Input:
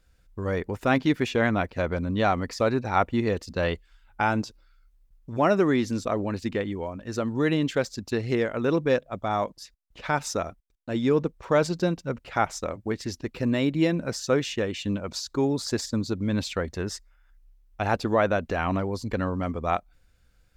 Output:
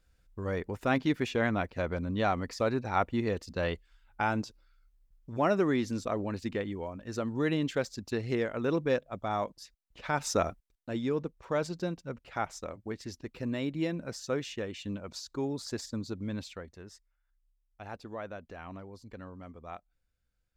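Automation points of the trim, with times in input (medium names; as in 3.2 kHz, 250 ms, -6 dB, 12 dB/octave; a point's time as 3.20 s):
10.12 s -5.5 dB
10.44 s +2 dB
11.12 s -9 dB
16.27 s -9 dB
16.77 s -18 dB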